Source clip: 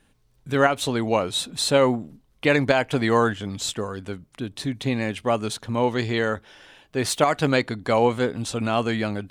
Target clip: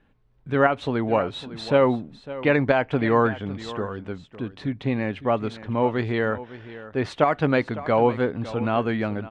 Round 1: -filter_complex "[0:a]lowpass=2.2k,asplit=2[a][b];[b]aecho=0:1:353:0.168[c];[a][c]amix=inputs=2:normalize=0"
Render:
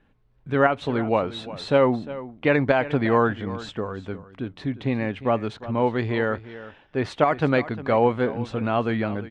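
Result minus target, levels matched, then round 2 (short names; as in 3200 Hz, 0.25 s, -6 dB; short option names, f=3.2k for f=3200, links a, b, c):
echo 0.203 s early
-filter_complex "[0:a]lowpass=2.2k,asplit=2[a][b];[b]aecho=0:1:556:0.168[c];[a][c]amix=inputs=2:normalize=0"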